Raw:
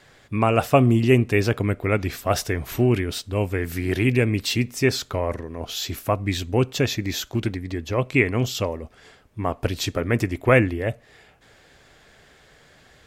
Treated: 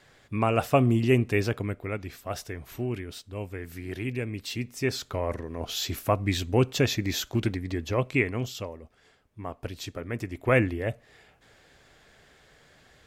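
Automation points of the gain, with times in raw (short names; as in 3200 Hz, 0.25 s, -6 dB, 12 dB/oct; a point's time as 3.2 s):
1.37 s -5 dB
2.02 s -12 dB
4.34 s -12 dB
5.54 s -2 dB
7.87 s -2 dB
8.7 s -11.5 dB
10.19 s -11.5 dB
10.61 s -4.5 dB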